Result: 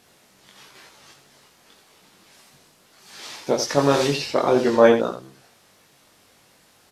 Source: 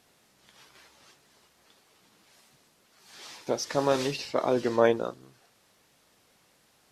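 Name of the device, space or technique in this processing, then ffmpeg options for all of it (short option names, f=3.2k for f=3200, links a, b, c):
slapback doubling: -filter_complex "[0:a]asplit=3[a][b][c];[b]adelay=21,volume=-3.5dB[d];[c]adelay=86,volume=-8dB[e];[a][d][e]amix=inputs=3:normalize=0,volume=6dB"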